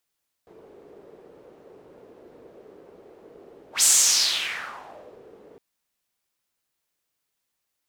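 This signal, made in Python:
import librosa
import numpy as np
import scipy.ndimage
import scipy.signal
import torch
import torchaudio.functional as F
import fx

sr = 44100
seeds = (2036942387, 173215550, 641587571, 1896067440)

y = fx.whoosh(sr, seeds[0], length_s=5.11, peak_s=3.36, rise_s=0.12, fall_s=1.48, ends_hz=430.0, peak_hz=7700.0, q=3.6, swell_db=33.0)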